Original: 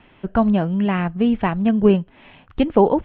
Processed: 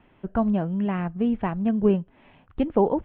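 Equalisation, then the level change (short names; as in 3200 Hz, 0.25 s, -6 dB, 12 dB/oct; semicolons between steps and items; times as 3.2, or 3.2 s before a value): high shelf 2500 Hz -11.5 dB; -5.5 dB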